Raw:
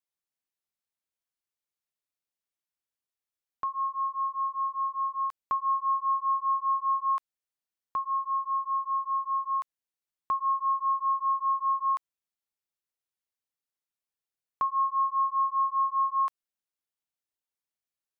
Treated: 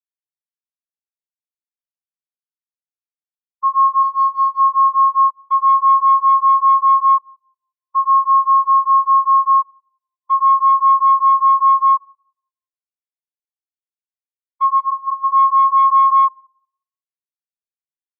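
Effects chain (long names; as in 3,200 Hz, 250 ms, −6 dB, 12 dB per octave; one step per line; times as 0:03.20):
samples sorted by size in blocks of 8 samples
0:04.03–0:04.60: Chebyshev band-stop filter 510–1,100 Hz, order 5
0:14.80–0:15.24: compressor whose output falls as the input rises −33 dBFS, ratio −0.5
0:15.77–0:16.25: leveller curve on the samples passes 1
wave folding −24 dBFS
high-frequency loss of the air 350 metres
tape delay 182 ms, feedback 63%, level −15 dB, low-pass 1,100 Hz
boost into a limiter +30 dB
every bin expanded away from the loudest bin 2.5 to 1
level −5.5 dB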